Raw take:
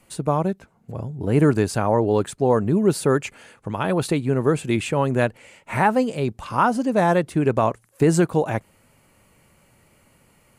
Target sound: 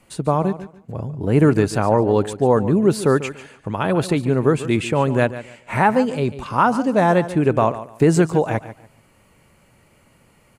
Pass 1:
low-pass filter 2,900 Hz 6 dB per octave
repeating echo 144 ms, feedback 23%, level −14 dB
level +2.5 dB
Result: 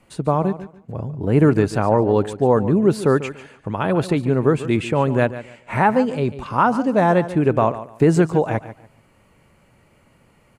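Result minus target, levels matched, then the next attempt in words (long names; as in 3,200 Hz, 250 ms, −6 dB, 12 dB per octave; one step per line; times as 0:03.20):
8,000 Hz band −5.5 dB
low-pass filter 7,000 Hz 6 dB per octave
repeating echo 144 ms, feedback 23%, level −14 dB
level +2.5 dB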